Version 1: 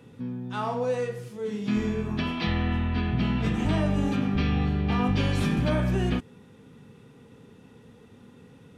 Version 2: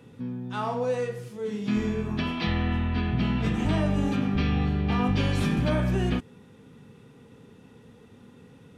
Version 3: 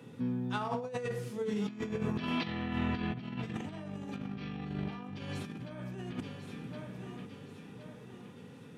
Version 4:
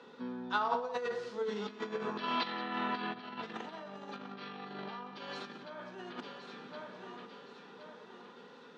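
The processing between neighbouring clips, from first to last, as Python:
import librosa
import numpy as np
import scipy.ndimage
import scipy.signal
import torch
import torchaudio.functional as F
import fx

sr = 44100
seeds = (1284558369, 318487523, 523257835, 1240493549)

y1 = x
y2 = scipy.signal.sosfilt(scipy.signal.butter(4, 110.0, 'highpass', fs=sr, output='sos'), y1)
y2 = fx.echo_feedback(y2, sr, ms=1067, feedback_pct=45, wet_db=-20)
y2 = fx.over_compress(y2, sr, threshold_db=-31.0, ratio=-0.5)
y2 = F.gain(torch.from_numpy(y2), -4.5).numpy()
y3 = fx.cabinet(y2, sr, low_hz=260.0, low_slope=24, high_hz=5700.0, hz=(290.0, 980.0, 1400.0, 2400.0, 4100.0), db=(-10, 6, 6, -5, 6))
y3 = y3 + 10.0 ** (-15.0 / 20.0) * np.pad(y3, (int(178 * sr / 1000.0), 0))[:len(y3)]
y3 = F.gain(torch.from_numpy(y3), 1.0).numpy()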